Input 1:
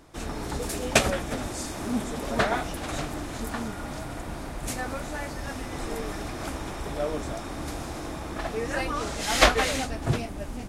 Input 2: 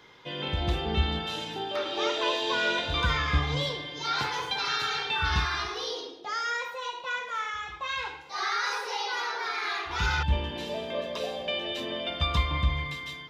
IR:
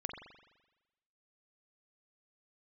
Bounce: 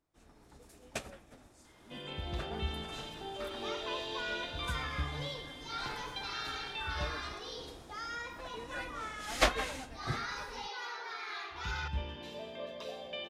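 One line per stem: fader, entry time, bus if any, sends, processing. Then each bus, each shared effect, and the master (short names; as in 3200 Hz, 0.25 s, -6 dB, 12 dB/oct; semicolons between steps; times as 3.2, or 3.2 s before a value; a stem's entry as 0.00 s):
2.53 s -19 dB -> 2.75 s -9.5 dB, 0.00 s, send -13.5 dB, upward expander 1.5:1, over -39 dBFS
-3.0 dB, 1.65 s, no send, resonator 130 Hz, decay 1.7 s, mix 60%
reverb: on, RT60 1.1 s, pre-delay 42 ms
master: dry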